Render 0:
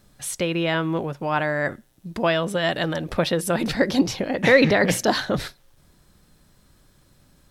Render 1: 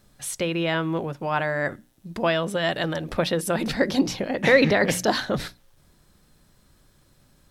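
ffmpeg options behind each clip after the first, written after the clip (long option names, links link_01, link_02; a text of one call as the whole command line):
ffmpeg -i in.wav -af "bandreject=frequency=60:width_type=h:width=6,bandreject=frequency=120:width_type=h:width=6,bandreject=frequency=180:width_type=h:width=6,bandreject=frequency=240:width_type=h:width=6,bandreject=frequency=300:width_type=h:width=6,volume=-1.5dB" out.wav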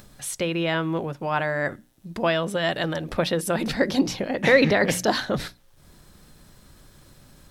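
ffmpeg -i in.wav -af "acompressor=mode=upward:threshold=-41dB:ratio=2.5" out.wav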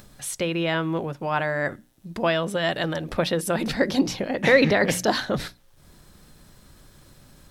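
ffmpeg -i in.wav -af anull out.wav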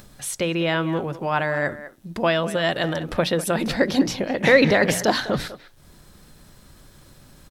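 ffmpeg -i in.wav -filter_complex "[0:a]asplit=2[link_01][link_02];[link_02]adelay=200,highpass=300,lowpass=3400,asoftclip=type=hard:threshold=-13.5dB,volume=-14dB[link_03];[link_01][link_03]amix=inputs=2:normalize=0,volume=2dB" out.wav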